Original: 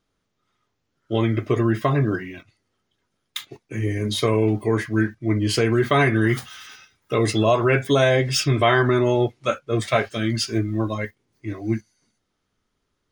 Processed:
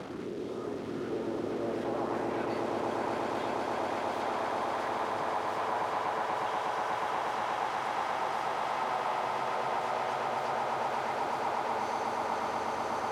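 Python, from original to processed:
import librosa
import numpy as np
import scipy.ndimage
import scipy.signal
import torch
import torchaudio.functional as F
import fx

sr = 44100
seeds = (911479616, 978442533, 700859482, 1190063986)

p1 = fx.delta_mod(x, sr, bps=64000, step_db=-28.0)
p2 = scipy.signal.sosfilt(scipy.signal.butter(2, 49.0, 'highpass', fs=sr, output='sos'), p1)
p3 = fx.over_compress(p2, sr, threshold_db=-26.0, ratio=-0.5)
p4 = p2 + F.gain(torch.from_numpy(p3), -1.0).numpy()
p5 = fx.filter_lfo_notch(p4, sr, shape='saw_up', hz=1.3, low_hz=300.0, high_hz=4000.0, q=0.79)
p6 = 10.0 ** (-24.5 / 20.0) * (np.abs((p5 / 10.0 ** (-24.5 / 20.0) + 3.0) % 4.0 - 2.0) - 1.0)
p7 = fx.filter_sweep_bandpass(p6, sr, from_hz=390.0, to_hz=820.0, start_s=1.46, end_s=2.06, q=2.7)
p8 = fx.echo_swell(p7, sr, ms=121, loudest=8, wet_db=-6)
y = fx.band_squash(p8, sr, depth_pct=40)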